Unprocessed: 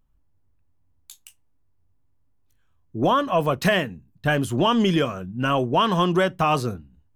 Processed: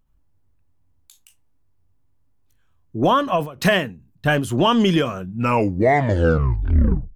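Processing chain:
turntable brake at the end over 1.87 s
every ending faded ahead of time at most 130 dB per second
level +3 dB

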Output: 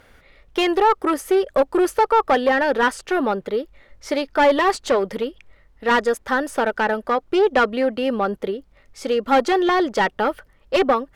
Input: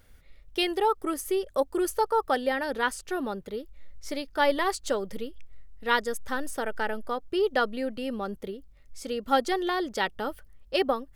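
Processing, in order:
asymmetric clip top −25.5 dBFS
mid-hump overdrive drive 17 dB, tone 1,300 Hz, clips at −11.5 dBFS
level +6.5 dB

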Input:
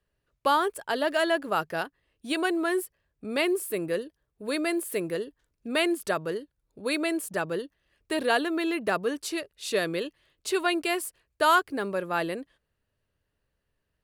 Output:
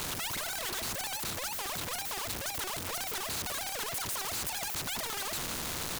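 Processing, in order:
sign of each sample alone
single-tap delay 480 ms −22.5 dB
wrong playback speed 33 rpm record played at 78 rpm
every bin compressed towards the loudest bin 2 to 1
level +1 dB

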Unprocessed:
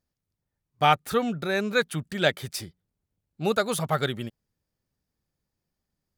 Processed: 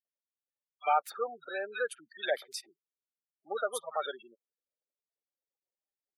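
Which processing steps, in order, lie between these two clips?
gate on every frequency bin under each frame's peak −15 dB strong
high-pass filter 490 Hz 24 dB per octave
multiband delay without the direct sound highs, lows 50 ms, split 1,700 Hz
level −5 dB

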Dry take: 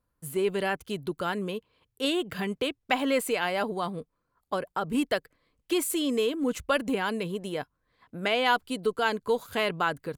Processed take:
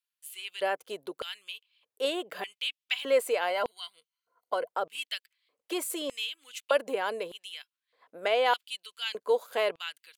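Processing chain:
0:03.50–0:04.70: EQ curve with evenly spaced ripples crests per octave 1.9, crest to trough 10 dB
auto-filter high-pass square 0.82 Hz 530–2,900 Hz
level −4 dB

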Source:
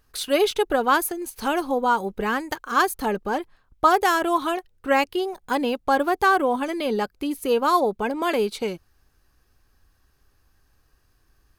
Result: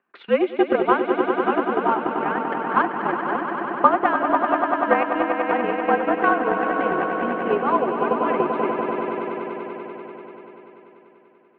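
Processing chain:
echo that builds up and dies away 97 ms, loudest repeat 5, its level −7 dB
single-sideband voice off tune −53 Hz 280–2,600 Hz
transient designer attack +8 dB, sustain −3 dB
level −3.5 dB

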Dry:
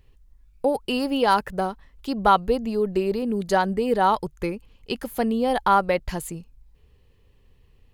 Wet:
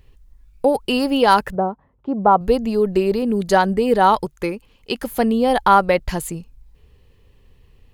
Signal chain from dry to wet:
0:01.55–0:02.41: Chebyshev band-pass filter 110–870 Hz, order 2
0:04.25–0:05.01: low-shelf EQ 150 Hz −9.5 dB
level +5.5 dB

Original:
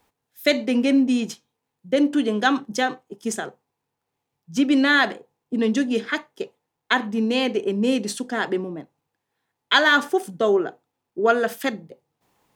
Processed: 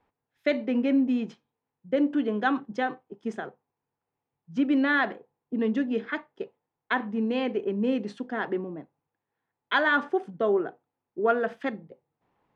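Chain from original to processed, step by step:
low-pass filter 2,100 Hz 12 dB per octave
level −5 dB

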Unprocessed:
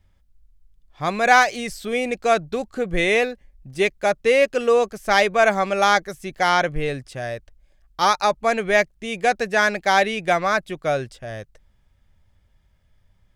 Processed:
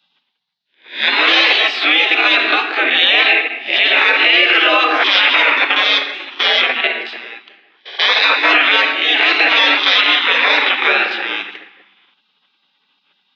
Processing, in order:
peak hold with a rise ahead of every peak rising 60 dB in 0.34 s
0:05.42–0:08.10: output level in coarse steps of 22 dB
single-sideband voice off tune +81 Hz 330–3,300 Hz
parametric band 860 Hz −10.5 dB 0.46 octaves
rectangular room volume 480 cubic metres, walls mixed, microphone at 0.77 metres
gate on every frequency bin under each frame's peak −15 dB weak
high-shelf EQ 2,400 Hz +11 dB
boost into a limiter +21 dB
level −1 dB

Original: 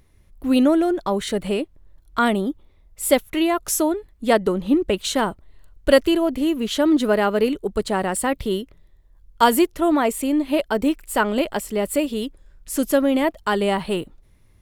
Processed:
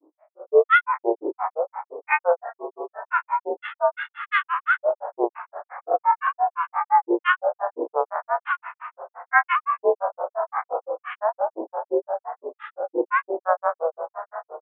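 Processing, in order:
spectrum smeared in time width 139 ms
on a send: feedback delay with all-pass diffusion 455 ms, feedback 56%, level −13 dB
on the sum: frequency shifter +420 Hz
Chebyshev band-pass filter 490–1,800 Hz, order 5
granular cloud 124 ms, grains 5.8 per second, pitch spread up and down by 12 semitones
level +6.5 dB

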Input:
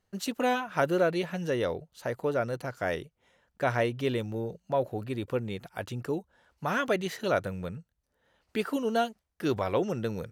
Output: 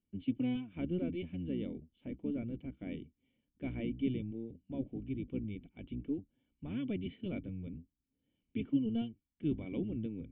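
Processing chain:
sub-octave generator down 1 octave, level −1 dB
formant resonators in series i
level +1 dB

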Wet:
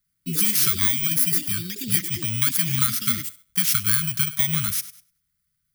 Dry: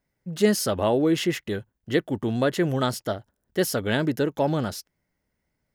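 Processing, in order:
samples in bit-reversed order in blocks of 16 samples
high-shelf EQ 7,500 Hz +7.5 dB
on a send: feedback echo with a high-pass in the loop 99 ms, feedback 31%, high-pass 180 Hz, level −17.5 dB
on the sum: downward compressor 12 to 1, threshold −22 dBFS, peak gain reduction 10 dB
noise gate −57 dBFS, range −6 dB
Chebyshev band-stop filter 170–1,300 Hz, order 3
low-shelf EQ 350 Hz −4 dB
delay with pitch and tempo change per echo 84 ms, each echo +7 semitones, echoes 2, each echo −6 dB
in parallel at −2.5 dB: output level in coarse steps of 10 dB
on the sum: level +5 dB

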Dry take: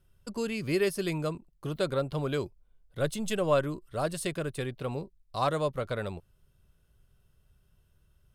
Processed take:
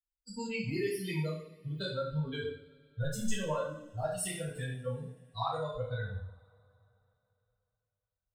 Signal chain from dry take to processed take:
spectral dynamics exaggerated over time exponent 3
downward compressor, threshold −40 dBFS, peak gain reduction 15.5 dB
coupled-rooms reverb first 0.59 s, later 3.2 s, from −27 dB, DRR −9.5 dB

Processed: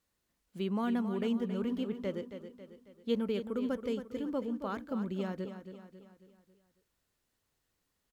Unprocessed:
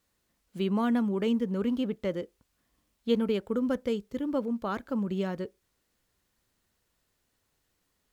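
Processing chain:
repeating echo 273 ms, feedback 48%, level −10 dB
level −5.5 dB

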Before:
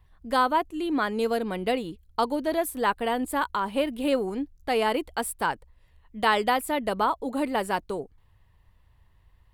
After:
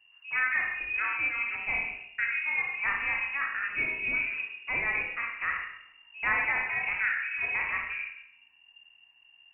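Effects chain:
peak hold with a decay on every bin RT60 0.38 s
four-comb reverb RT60 0.74 s, combs from 27 ms, DRR 0.5 dB
voice inversion scrambler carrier 2,800 Hz
level −8 dB

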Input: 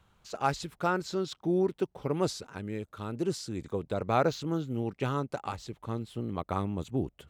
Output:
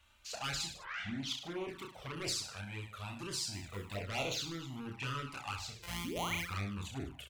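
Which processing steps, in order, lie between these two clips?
0:05.79–0:06.47: samples sorted by size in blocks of 256 samples
soft clipping −30 dBFS, distortion −8 dB
graphic EQ with 15 bands 160 Hz −6 dB, 630 Hz +4 dB, 2,500 Hz +6 dB
0:00.70: tape start 0.68 s
0:03.53–0:03.95: floating-point word with a short mantissa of 4 bits
0:06.04–0:06.35: sound drawn into the spectrogram rise 210–2,600 Hz −32 dBFS
reverse bouncing-ball delay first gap 30 ms, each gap 1.15×, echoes 5
flanger swept by the level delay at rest 3.5 ms, full sweep at −26.5 dBFS
guitar amp tone stack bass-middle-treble 5-5-5
level +11.5 dB

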